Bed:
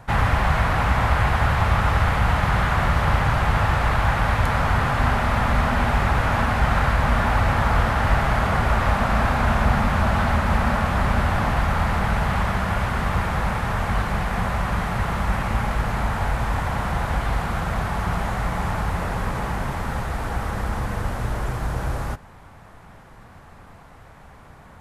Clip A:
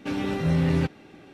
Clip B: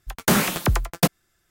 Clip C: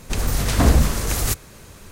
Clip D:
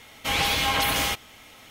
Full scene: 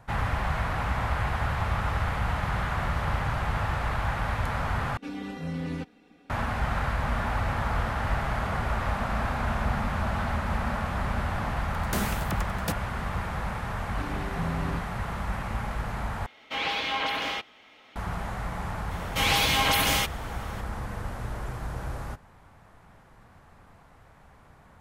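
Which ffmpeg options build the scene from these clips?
ffmpeg -i bed.wav -i cue0.wav -i cue1.wav -i cue2.wav -i cue3.wav -filter_complex "[1:a]asplit=2[link_01][link_02];[4:a]asplit=2[link_03][link_04];[0:a]volume=-8.5dB[link_05];[link_01]aecho=1:1:4.1:0.97[link_06];[link_03]acrossover=split=210 4500:gain=0.2 1 0.0708[link_07][link_08][link_09];[link_07][link_08][link_09]amix=inputs=3:normalize=0[link_10];[link_05]asplit=3[link_11][link_12][link_13];[link_11]atrim=end=4.974[link_14];[link_06]atrim=end=1.33,asetpts=PTS-STARTPTS,volume=-11.5dB[link_15];[link_12]atrim=start=6.296:end=16.264[link_16];[link_10]atrim=end=1.7,asetpts=PTS-STARTPTS,volume=-4dB[link_17];[link_13]atrim=start=17.956[link_18];[2:a]atrim=end=1.5,asetpts=PTS-STARTPTS,volume=-12dB,afade=type=in:duration=0.004:curve=hsin,afade=type=out:start_time=1.496:duration=0.004:curve=hsin,adelay=11650[link_19];[link_02]atrim=end=1.33,asetpts=PTS-STARTPTS,volume=-11dB,afade=type=in:duration=0.004:curve=hsin,afade=type=out:start_time=1.326:duration=0.004:curve=hsin,adelay=13920[link_20];[link_04]atrim=end=1.7,asetpts=PTS-STARTPTS,afade=type=in:duration=0.004:curve=hsin,afade=type=out:start_time=1.696:duration=0.004:curve=hsin,adelay=18910[link_21];[link_14][link_15]acrossfade=duration=0.004:curve1=hsin:curve2=hsin[link_22];[link_22][link_16]acrossfade=duration=0.004:curve1=hsin:curve2=hsin[link_23];[link_23][link_17]acrossfade=duration=0.004:curve1=hsin:curve2=hsin[link_24];[link_24][link_18]acrossfade=duration=0.004:curve1=hsin:curve2=hsin[link_25];[link_25][link_19][link_20][link_21]amix=inputs=4:normalize=0" out.wav

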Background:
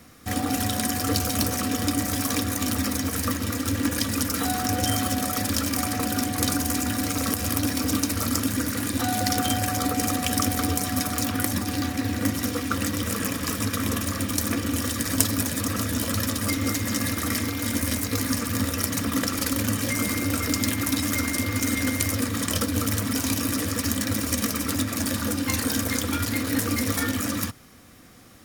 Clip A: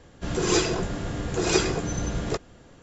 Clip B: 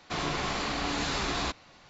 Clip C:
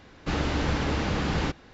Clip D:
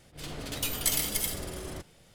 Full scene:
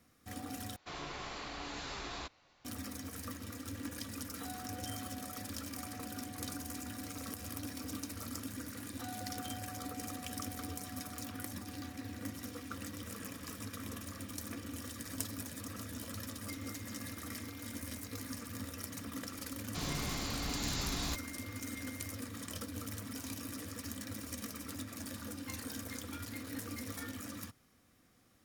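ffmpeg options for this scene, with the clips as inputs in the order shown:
ffmpeg -i bed.wav -i cue0.wav -i cue1.wav -filter_complex "[2:a]asplit=2[link_01][link_02];[0:a]volume=-18dB[link_03];[link_01]equalizer=frequency=190:width_type=o:width=0.77:gain=-5[link_04];[link_02]bass=frequency=250:gain=11,treble=frequency=4000:gain=13[link_05];[link_03]asplit=2[link_06][link_07];[link_06]atrim=end=0.764[link_08];[link_04]atrim=end=1.89,asetpts=PTS-STARTPTS,volume=-12dB[link_09];[link_07]atrim=start=2.646[link_10];[link_05]atrim=end=1.89,asetpts=PTS-STARTPTS,volume=-12.5dB,afade=type=in:duration=0.004:curve=hsin,afade=type=out:start_time=1.886:duration=0.004:curve=hsin,adelay=19640[link_11];[link_08][link_09]acrossfade=duration=0.004:curve1=hsin:curve2=hsin[link_12];[link_12][link_10]acrossfade=duration=0.004:curve1=hsin:curve2=hsin[link_13];[link_13][link_11]amix=inputs=2:normalize=0" out.wav

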